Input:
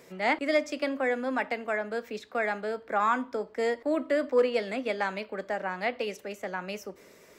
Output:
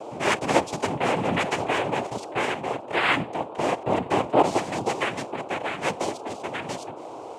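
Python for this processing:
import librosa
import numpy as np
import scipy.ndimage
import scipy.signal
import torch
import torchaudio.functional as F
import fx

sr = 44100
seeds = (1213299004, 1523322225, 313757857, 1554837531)

y = x + 10.0 ** (-39.0 / 20.0) * np.sin(2.0 * np.pi * 470.0 * np.arange(len(x)) / sr)
y = fx.noise_vocoder(y, sr, seeds[0], bands=4)
y = fx.env_flatten(y, sr, amount_pct=50, at=(1.0, 2.07))
y = y * 10.0 ** (3.5 / 20.0)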